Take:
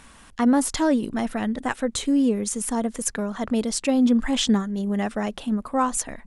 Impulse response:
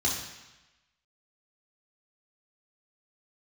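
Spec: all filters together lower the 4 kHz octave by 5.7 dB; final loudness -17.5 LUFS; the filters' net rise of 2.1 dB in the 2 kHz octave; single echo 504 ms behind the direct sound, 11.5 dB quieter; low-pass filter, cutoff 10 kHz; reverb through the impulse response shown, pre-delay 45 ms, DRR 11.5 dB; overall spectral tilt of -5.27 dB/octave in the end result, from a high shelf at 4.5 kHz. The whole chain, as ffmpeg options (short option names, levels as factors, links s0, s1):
-filter_complex "[0:a]lowpass=10000,equalizer=f=2000:t=o:g=5,equalizer=f=4000:t=o:g=-6,highshelf=f=4500:g=-7,aecho=1:1:504:0.266,asplit=2[s0][s1];[1:a]atrim=start_sample=2205,adelay=45[s2];[s1][s2]afir=irnorm=-1:irlink=0,volume=0.0944[s3];[s0][s3]amix=inputs=2:normalize=0,volume=1.88"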